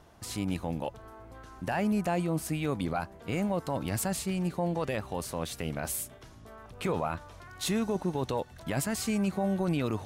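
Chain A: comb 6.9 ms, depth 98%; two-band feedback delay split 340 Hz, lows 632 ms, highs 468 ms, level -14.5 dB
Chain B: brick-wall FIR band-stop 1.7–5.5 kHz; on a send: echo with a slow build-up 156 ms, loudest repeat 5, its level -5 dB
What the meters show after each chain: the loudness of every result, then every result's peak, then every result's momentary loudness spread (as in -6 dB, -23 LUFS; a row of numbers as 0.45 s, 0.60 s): -29.5 LUFS, -27.5 LUFS; -15.0 dBFS, -12.5 dBFS; 11 LU, 7 LU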